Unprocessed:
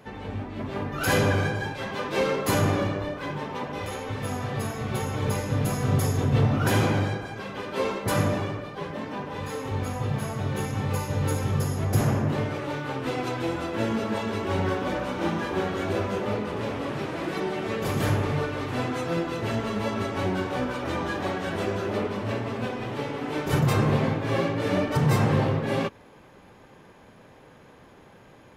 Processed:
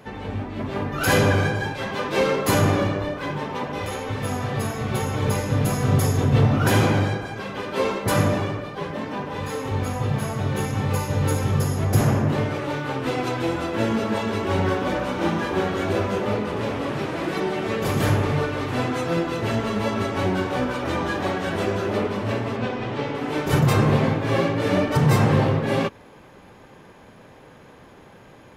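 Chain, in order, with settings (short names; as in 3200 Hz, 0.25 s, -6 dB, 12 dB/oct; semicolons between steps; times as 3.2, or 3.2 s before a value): 22.56–23.15 LPF 5800 Hz 12 dB/oct; gain +4 dB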